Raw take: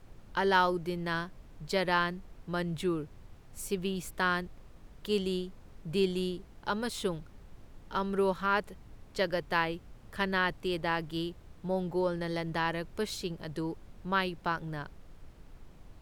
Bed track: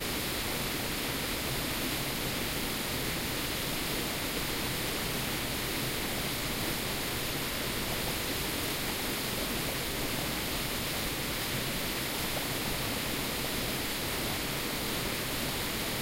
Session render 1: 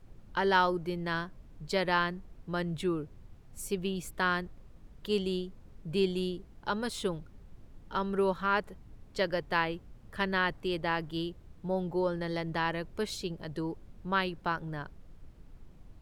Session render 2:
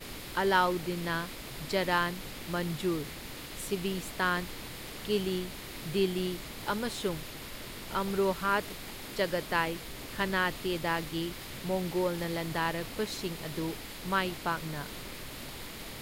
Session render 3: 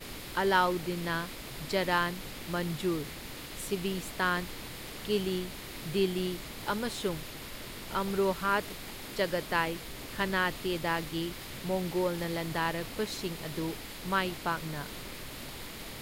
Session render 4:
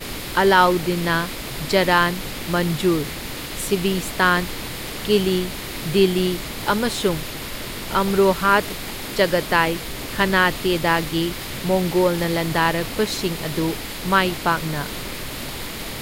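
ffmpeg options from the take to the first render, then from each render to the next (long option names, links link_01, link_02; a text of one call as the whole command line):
ffmpeg -i in.wav -af "afftdn=noise_reduction=6:noise_floor=-54" out.wav
ffmpeg -i in.wav -i bed.wav -filter_complex "[1:a]volume=-10dB[link_01];[0:a][link_01]amix=inputs=2:normalize=0" out.wav
ffmpeg -i in.wav -af anull out.wav
ffmpeg -i in.wav -af "volume=12dB,alimiter=limit=-3dB:level=0:latency=1" out.wav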